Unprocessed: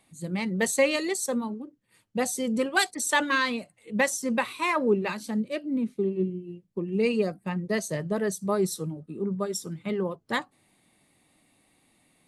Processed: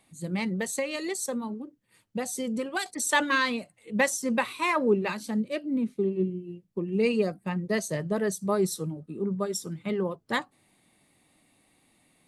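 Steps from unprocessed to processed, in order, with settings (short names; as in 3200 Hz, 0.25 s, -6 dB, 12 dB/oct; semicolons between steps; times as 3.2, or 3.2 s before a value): 0.53–2.86 compressor 4:1, threshold -28 dBFS, peak gain reduction 10 dB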